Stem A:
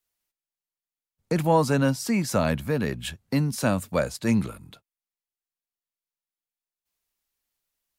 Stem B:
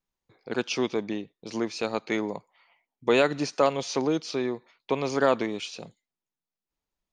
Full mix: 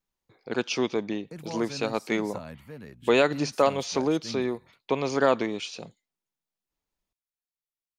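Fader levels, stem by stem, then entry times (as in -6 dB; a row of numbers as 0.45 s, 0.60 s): -17.5 dB, +0.5 dB; 0.00 s, 0.00 s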